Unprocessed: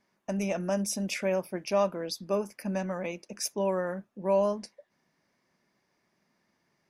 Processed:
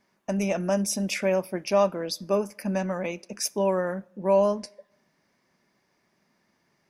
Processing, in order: on a send: high-pass 510 Hz 6 dB/octave + reverberation RT60 0.90 s, pre-delay 5 ms, DRR 21.5 dB; on the sum: trim +4 dB

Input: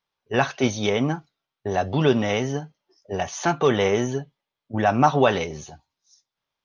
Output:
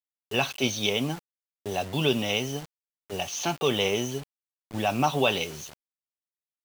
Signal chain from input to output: high-pass 76 Hz 12 dB/octave; resonant high shelf 2.2 kHz +6 dB, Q 3; bit crusher 6-bit; trim -6 dB

